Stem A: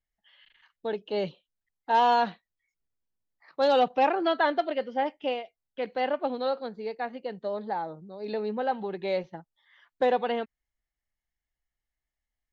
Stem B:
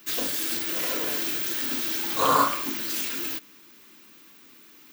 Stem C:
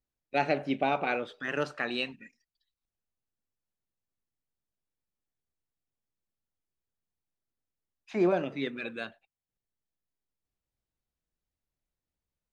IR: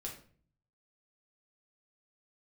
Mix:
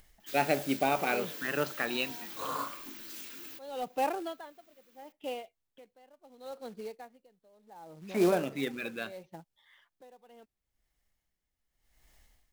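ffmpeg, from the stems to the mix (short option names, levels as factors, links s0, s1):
-filter_complex "[0:a]equalizer=f=1600:t=o:w=1.1:g=-3.5,acompressor=mode=upward:threshold=0.0316:ratio=2.5,aeval=exprs='val(0)*pow(10,-26*(0.5-0.5*cos(2*PI*0.74*n/s))/20)':c=same,volume=0.501[s0];[1:a]adelay=200,volume=0.168[s1];[2:a]volume=0.944[s2];[s0][s1][s2]amix=inputs=3:normalize=0,acrusher=bits=4:mode=log:mix=0:aa=0.000001"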